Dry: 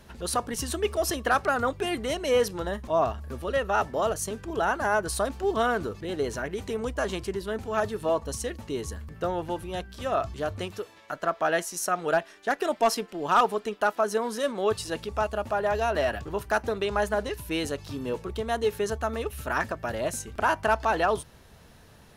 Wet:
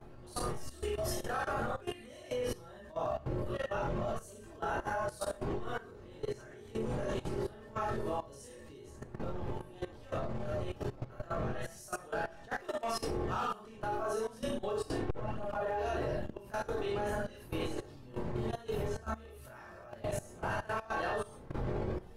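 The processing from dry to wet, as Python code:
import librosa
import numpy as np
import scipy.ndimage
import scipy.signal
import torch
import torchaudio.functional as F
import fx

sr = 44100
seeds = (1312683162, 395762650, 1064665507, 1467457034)

y = fx.dmg_wind(x, sr, seeds[0], corner_hz=450.0, level_db=-28.0)
y = fx.comb_fb(y, sr, f0_hz=120.0, decay_s=0.25, harmonics='odd', damping=0.0, mix_pct=70)
y = fx.rev_schroeder(y, sr, rt60_s=0.46, comb_ms=28, drr_db=-2.5)
y = fx.chorus_voices(y, sr, voices=6, hz=0.54, base_ms=23, depth_ms=1.4, mix_pct=50)
y = fx.level_steps(y, sr, step_db=17)
y = fx.transformer_sat(y, sr, knee_hz=200.0)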